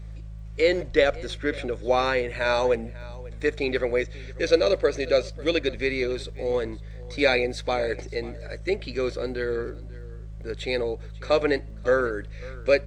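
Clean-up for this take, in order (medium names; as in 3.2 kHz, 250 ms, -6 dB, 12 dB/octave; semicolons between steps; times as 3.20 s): de-click; de-hum 53.3 Hz, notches 3; inverse comb 543 ms -20.5 dB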